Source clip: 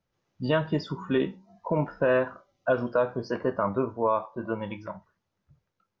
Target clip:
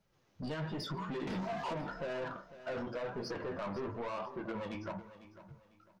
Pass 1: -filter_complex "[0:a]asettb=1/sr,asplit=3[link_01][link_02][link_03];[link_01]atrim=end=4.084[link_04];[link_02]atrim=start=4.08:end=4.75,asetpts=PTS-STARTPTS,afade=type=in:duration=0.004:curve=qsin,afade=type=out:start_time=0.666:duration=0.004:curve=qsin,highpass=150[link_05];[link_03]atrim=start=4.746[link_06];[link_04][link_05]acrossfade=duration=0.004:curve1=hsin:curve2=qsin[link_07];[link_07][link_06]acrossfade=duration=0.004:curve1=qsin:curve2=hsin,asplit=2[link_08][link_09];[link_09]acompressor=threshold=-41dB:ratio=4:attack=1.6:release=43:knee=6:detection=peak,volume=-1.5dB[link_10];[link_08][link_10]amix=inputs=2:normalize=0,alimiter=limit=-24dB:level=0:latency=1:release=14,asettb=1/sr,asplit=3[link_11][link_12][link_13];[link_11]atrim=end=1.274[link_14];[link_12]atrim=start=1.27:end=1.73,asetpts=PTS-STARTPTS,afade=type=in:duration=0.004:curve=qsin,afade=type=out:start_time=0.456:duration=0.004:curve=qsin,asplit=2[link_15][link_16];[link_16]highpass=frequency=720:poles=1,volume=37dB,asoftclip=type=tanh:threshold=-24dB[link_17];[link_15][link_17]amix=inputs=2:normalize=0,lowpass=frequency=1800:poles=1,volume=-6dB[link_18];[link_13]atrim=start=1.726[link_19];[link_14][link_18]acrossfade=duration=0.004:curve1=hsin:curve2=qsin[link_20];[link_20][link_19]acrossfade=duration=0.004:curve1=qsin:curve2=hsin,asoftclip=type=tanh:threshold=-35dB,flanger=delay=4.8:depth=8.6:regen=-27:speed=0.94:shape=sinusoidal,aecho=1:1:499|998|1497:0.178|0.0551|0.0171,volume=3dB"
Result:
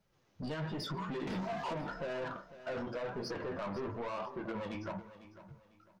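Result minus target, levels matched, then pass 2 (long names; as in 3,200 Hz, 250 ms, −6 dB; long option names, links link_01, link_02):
downward compressor: peak gain reduction −6.5 dB
-filter_complex "[0:a]asettb=1/sr,asplit=3[link_01][link_02][link_03];[link_01]atrim=end=4.084[link_04];[link_02]atrim=start=4.08:end=4.75,asetpts=PTS-STARTPTS,afade=type=in:duration=0.004:curve=qsin,afade=type=out:start_time=0.666:duration=0.004:curve=qsin,highpass=150[link_05];[link_03]atrim=start=4.746[link_06];[link_04][link_05]acrossfade=duration=0.004:curve1=hsin:curve2=qsin[link_07];[link_07][link_06]acrossfade=duration=0.004:curve1=qsin:curve2=hsin,asplit=2[link_08][link_09];[link_09]acompressor=threshold=-49.5dB:ratio=4:attack=1.6:release=43:knee=6:detection=peak,volume=-1.5dB[link_10];[link_08][link_10]amix=inputs=2:normalize=0,alimiter=limit=-24dB:level=0:latency=1:release=14,asettb=1/sr,asplit=3[link_11][link_12][link_13];[link_11]atrim=end=1.274[link_14];[link_12]atrim=start=1.27:end=1.73,asetpts=PTS-STARTPTS,afade=type=in:duration=0.004:curve=qsin,afade=type=out:start_time=0.456:duration=0.004:curve=qsin,asplit=2[link_15][link_16];[link_16]highpass=frequency=720:poles=1,volume=37dB,asoftclip=type=tanh:threshold=-24dB[link_17];[link_15][link_17]amix=inputs=2:normalize=0,lowpass=frequency=1800:poles=1,volume=-6dB[link_18];[link_13]atrim=start=1.726[link_19];[link_14][link_18]acrossfade=duration=0.004:curve1=hsin:curve2=qsin[link_20];[link_20][link_19]acrossfade=duration=0.004:curve1=qsin:curve2=hsin,asoftclip=type=tanh:threshold=-35dB,flanger=delay=4.8:depth=8.6:regen=-27:speed=0.94:shape=sinusoidal,aecho=1:1:499|998|1497:0.178|0.0551|0.0171,volume=3dB"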